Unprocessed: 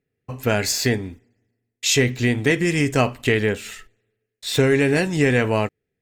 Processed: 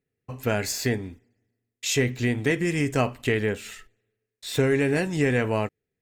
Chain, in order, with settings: dynamic EQ 4300 Hz, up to -4 dB, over -33 dBFS, Q 0.88; gain -4.5 dB

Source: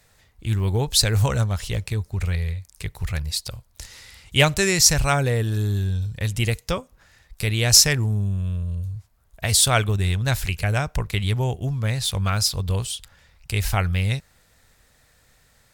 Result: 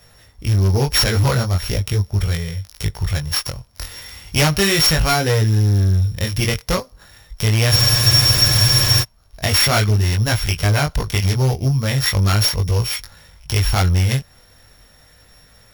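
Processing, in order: sample sorter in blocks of 8 samples; dynamic EQ 2100 Hz, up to +4 dB, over -34 dBFS, Q 0.86; in parallel at -0.5 dB: compressor, threshold -30 dBFS, peak gain reduction 20 dB; on the sum: chorus 0.39 Hz, delay 18.5 ms, depth 4.1 ms; hard clip -18 dBFS, distortion -11 dB; spectral freeze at 7.73, 1.29 s; gain +6.5 dB

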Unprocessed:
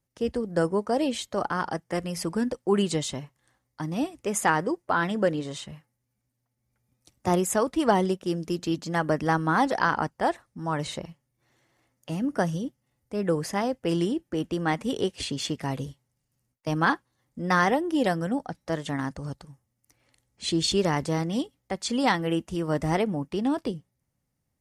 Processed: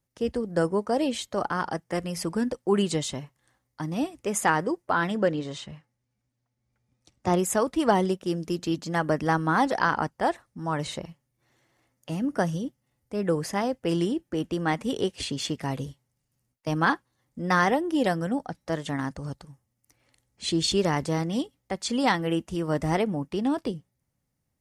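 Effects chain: 5.17–7.39 LPF 6700 Hz 12 dB/oct

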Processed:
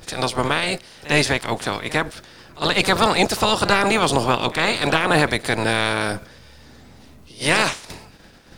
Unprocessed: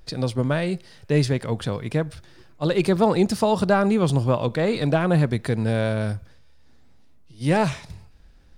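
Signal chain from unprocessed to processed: spectral limiter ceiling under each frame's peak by 24 dB; crackle 67/s -51 dBFS; pre-echo 53 ms -17.5 dB; gain +2 dB

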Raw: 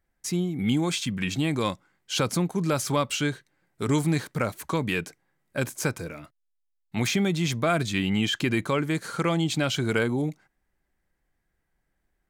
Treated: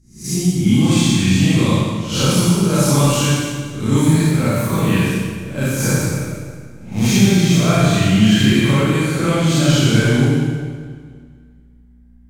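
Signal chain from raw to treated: spectral swells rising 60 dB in 0.42 s; hum 60 Hz, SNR 32 dB; tone controls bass +11 dB, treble +5 dB; Schroeder reverb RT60 1.9 s, combs from 29 ms, DRR -9.5 dB; mismatched tape noise reduction decoder only; gain -4.5 dB

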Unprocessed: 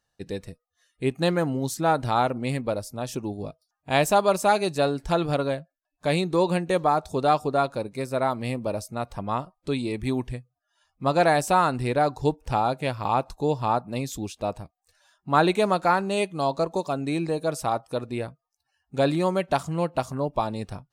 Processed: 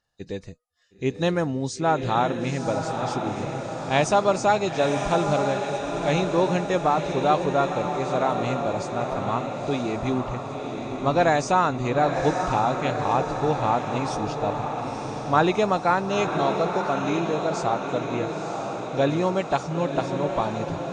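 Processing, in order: nonlinear frequency compression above 3600 Hz 1.5:1; diffused feedback echo 0.966 s, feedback 60%, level -5.5 dB

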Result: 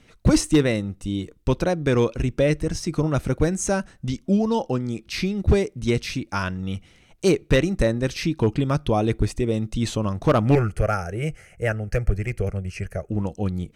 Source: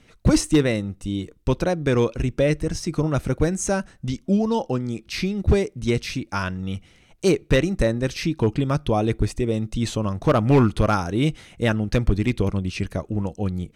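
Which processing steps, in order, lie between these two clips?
10.55–13.1 fixed phaser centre 1000 Hz, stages 6

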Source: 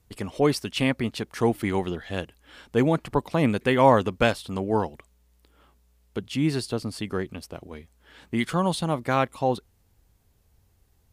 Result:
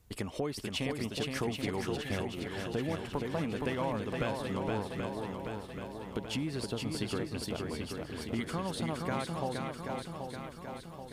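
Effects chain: compressor 6:1, threshold -33 dBFS, peak gain reduction 19.5 dB; on a send: swung echo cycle 0.781 s, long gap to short 1.5:1, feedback 55%, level -4 dB

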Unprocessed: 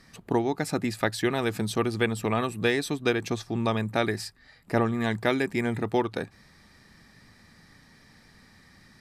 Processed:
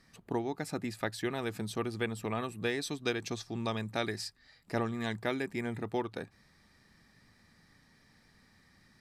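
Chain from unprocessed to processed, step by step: 2.81–5.13 bell 5200 Hz +6.5 dB 1.6 oct; gain -8.5 dB

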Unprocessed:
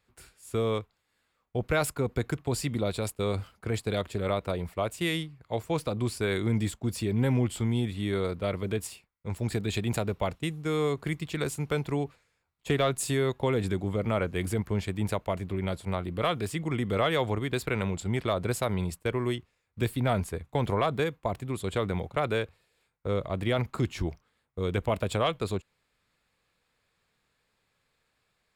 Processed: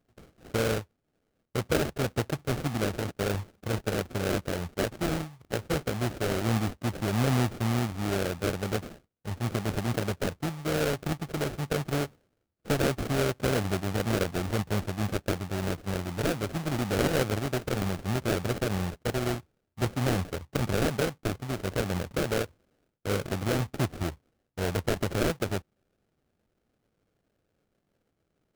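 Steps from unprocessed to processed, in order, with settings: HPF 66 Hz 24 dB/oct; sample-rate reducer 1000 Hz, jitter 20%

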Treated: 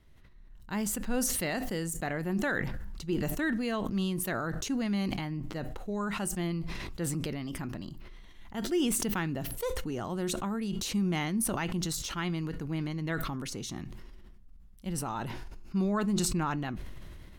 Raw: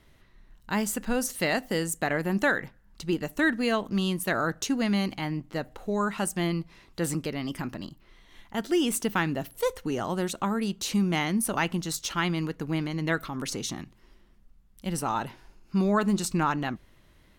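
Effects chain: low shelf 190 Hz +8.5 dB; resonator 360 Hz, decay 0.21 s, mix 40%; sustainer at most 22 dB/s; gain -4.5 dB

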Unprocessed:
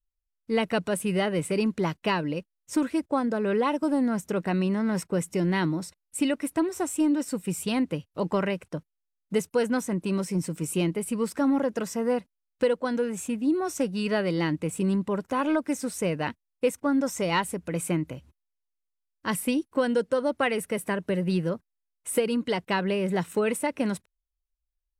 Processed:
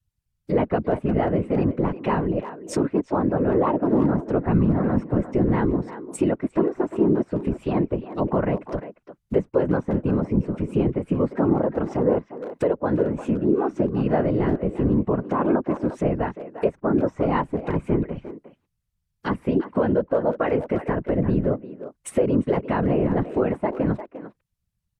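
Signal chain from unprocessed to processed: treble ducked by the level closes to 1100 Hz, closed at -26 dBFS; 4.43–5.28 comb 6.3 ms, depth 60%; in parallel at +0.5 dB: limiter -22.5 dBFS, peak gain reduction 9 dB; on the sum: whisperiser; speakerphone echo 0.35 s, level -11 dB

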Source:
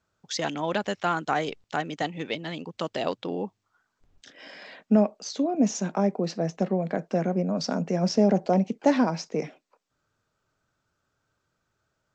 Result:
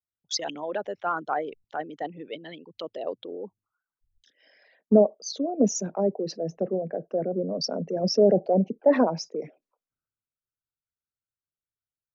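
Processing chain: formant sharpening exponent 2; three-band expander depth 70%; gain -2 dB

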